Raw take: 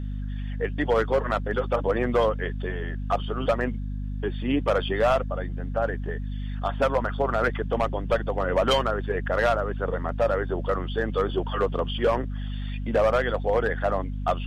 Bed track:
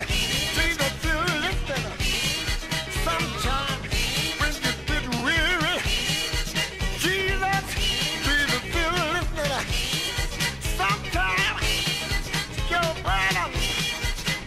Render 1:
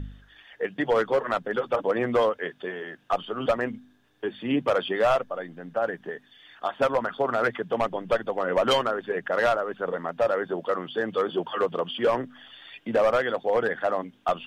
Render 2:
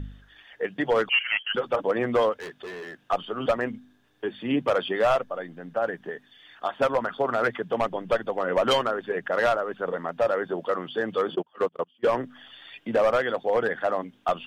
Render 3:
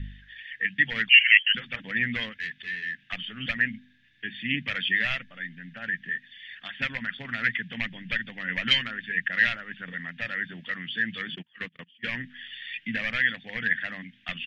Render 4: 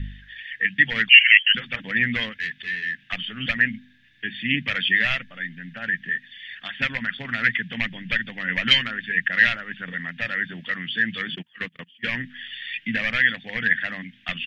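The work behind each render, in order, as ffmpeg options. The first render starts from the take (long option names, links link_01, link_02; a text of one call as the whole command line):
ffmpeg -i in.wav -af "bandreject=frequency=50:width_type=h:width=4,bandreject=frequency=100:width_type=h:width=4,bandreject=frequency=150:width_type=h:width=4,bandreject=frequency=200:width_type=h:width=4,bandreject=frequency=250:width_type=h:width=4" out.wav
ffmpeg -i in.wav -filter_complex "[0:a]asettb=1/sr,asplit=3[link_01][link_02][link_03];[link_01]atrim=end=1.094[link_04];[link_02]atrim=start=1.09:end=1.55,asetpts=PTS-STARTPTS,afade=type=in:duration=0.004:curve=qsin,afade=type=out:start_time=0.456:duration=0.004:curve=qsin,lowpass=frequency=2800:width_type=q:width=0.5098,lowpass=frequency=2800:width_type=q:width=0.6013,lowpass=frequency=2800:width_type=q:width=0.9,lowpass=frequency=2800:width_type=q:width=2.563,afreqshift=-3300[link_05];[link_03]atrim=start=1.546[link_06];[link_04][link_05]acrossfade=duration=0.004:curve1=hsin:curve2=qsin[link_07];[link_07][link_06]acrossfade=duration=0.004:curve1=qsin:curve2=hsin,asplit=3[link_08][link_09][link_10];[link_08]afade=type=out:start_time=2.32:duration=0.02[link_11];[link_09]asoftclip=type=hard:threshold=-34dB,afade=type=in:start_time=2.32:duration=0.02,afade=type=out:start_time=2.97:duration=0.02[link_12];[link_10]afade=type=in:start_time=2.97:duration=0.02[link_13];[link_11][link_12][link_13]amix=inputs=3:normalize=0,asplit=3[link_14][link_15][link_16];[link_14]afade=type=out:start_time=11.34:duration=0.02[link_17];[link_15]agate=range=-30dB:threshold=-27dB:ratio=16:release=100:detection=peak,afade=type=in:start_time=11.34:duration=0.02,afade=type=out:start_time=12.12:duration=0.02[link_18];[link_16]afade=type=in:start_time=12.12:duration=0.02[link_19];[link_17][link_18][link_19]amix=inputs=3:normalize=0" out.wav
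ffmpeg -i in.wav -af "firequalizer=gain_entry='entry(220,0);entry(370,-23);entry(590,-24);entry(1200,-19);entry(1800,12);entry(5100,-3);entry(8400,-14)':delay=0.05:min_phase=1" out.wav
ffmpeg -i in.wav -af "volume=5dB,alimiter=limit=-1dB:level=0:latency=1" out.wav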